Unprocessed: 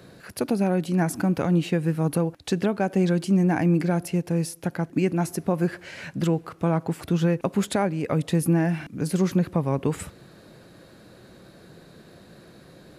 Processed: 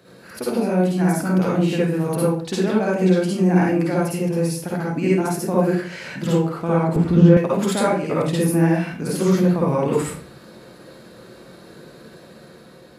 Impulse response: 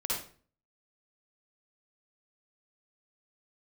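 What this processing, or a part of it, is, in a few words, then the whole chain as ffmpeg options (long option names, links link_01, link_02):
far laptop microphone: -filter_complex "[1:a]atrim=start_sample=2205[link_01];[0:a][link_01]afir=irnorm=-1:irlink=0,highpass=frequency=150:poles=1,dynaudnorm=framelen=930:gausssize=3:maxgain=3.5dB,asettb=1/sr,asplit=3[link_02][link_03][link_04];[link_02]atrim=end=6.964[link_05];[link_03]atrim=start=6.96:end=7.37,asetpts=PTS-STARTPTS,afade=type=in:duration=0.004:curve=qsin,afade=type=out:start_time=0.406:duration=0.004:curve=qsin,aemphasis=mode=reproduction:type=riaa[link_06];[link_04]atrim=start=7.366[link_07];[link_05][link_06]acrossfade=duration=0.004:curve1=hsin:curve2=qsin[link_08];[link_08][link_07]acrossfade=duration=0.004:curve1=qsin:curve2=hsin,volume=-1.5dB"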